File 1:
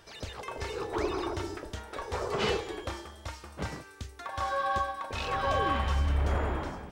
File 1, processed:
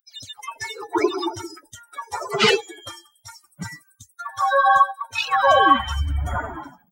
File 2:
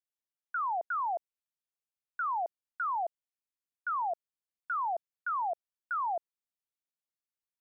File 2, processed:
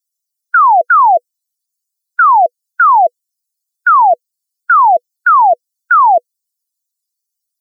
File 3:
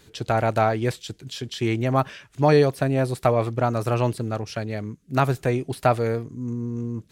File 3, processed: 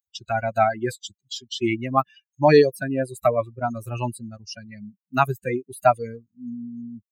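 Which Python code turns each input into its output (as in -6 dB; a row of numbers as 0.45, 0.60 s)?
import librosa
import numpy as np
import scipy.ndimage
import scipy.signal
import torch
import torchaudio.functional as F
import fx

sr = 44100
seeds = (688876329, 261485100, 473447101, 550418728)

y = fx.bin_expand(x, sr, power=3.0)
y = fx.highpass(y, sr, hz=300.0, slope=6)
y = fx.notch(y, sr, hz=490.0, q=12.0)
y = y * 10.0 ** (-3 / 20.0) / np.max(np.abs(y))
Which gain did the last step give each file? +19.5, +28.0, +8.0 dB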